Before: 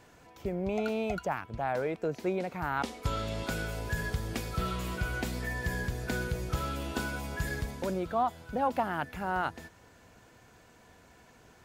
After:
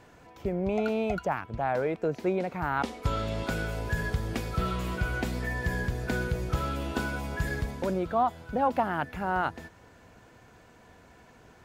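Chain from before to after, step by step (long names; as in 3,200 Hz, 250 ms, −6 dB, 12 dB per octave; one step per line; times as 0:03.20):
high-shelf EQ 3,700 Hz −7 dB
level +3.5 dB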